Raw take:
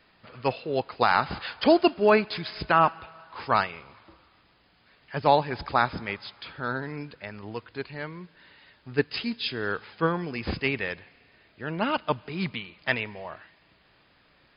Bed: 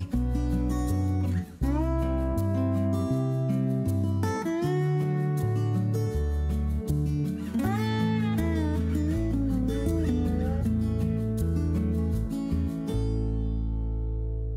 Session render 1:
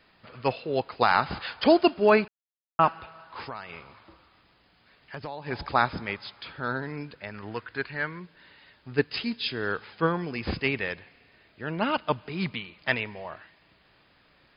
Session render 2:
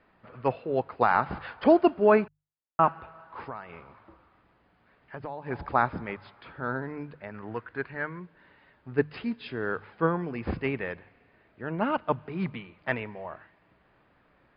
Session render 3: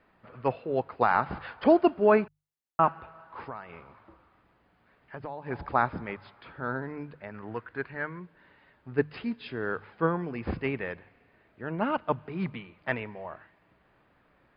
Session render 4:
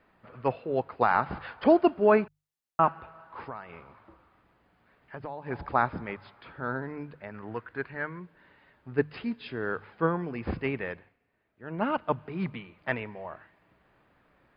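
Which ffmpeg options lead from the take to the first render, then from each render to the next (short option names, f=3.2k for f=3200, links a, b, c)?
-filter_complex "[0:a]asplit=3[a][b][c];[a]afade=t=out:st=3.41:d=0.02[d];[b]acompressor=threshold=-33dB:ratio=8:attack=3.2:release=140:knee=1:detection=peak,afade=t=in:st=3.41:d=0.02,afade=t=out:st=5.46:d=0.02[e];[c]afade=t=in:st=5.46:d=0.02[f];[d][e][f]amix=inputs=3:normalize=0,asettb=1/sr,asplit=3[g][h][i];[g]atrim=end=7.344[j];[h]atrim=start=7.34:end=8.2,asetpts=PTS-STARTPTS,afade=t=in:d=0.004:c=qsin,afade=t=out:st=0.856:d=0.004:c=qsin,equalizer=f=1.6k:t=o:w=0.79:g=10[k];[i]atrim=start=8.196[l];[j][k]acrossfade=d=0.004:c1=hsin:c2=qsin[m];[m][l]acrossfade=d=0.004:c1=qsin:c2=hsin,asplit=3[n][o][p];[n]atrim=end=2.28,asetpts=PTS-STARTPTS,afade=t=out:st=2.276:d=0.004:c=hsin[q];[o]atrim=start=2.28:end=2.79,asetpts=PTS-STARTPTS,volume=0[r];[p]atrim=start=2.79,asetpts=PTS-STARTPTS,afade=t=in:d=0.004:c=hsin[s];[q][r][s]concat=n=3:v=0:a=1"
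-af "lowpass=1.6k,bandreject=f=50:t=h:w=6,bandreject=f=100:t=h:w=6,bandreject=f=150:t=h:w=6"
-af "volume=-1dB"
-filter_complex "[0:a]asplit=3[a][b][c];[a]atrim=end=11.17,asetpts=PTS-STARTPTS,afade=t=out:st=10.92:d=0.25:silence=0.237137[d];[b]atrim=start=11.17:end=11.57,asetpts=PTS-STARTPTS,volume=-12.5dB[e];[c]atrim=start=11.57,asetpts=PTS-STARTPTS,afade=t=in:d=0.25:silence=0.237137[f];[d][e][f]concat=n=3:v=0:a=1"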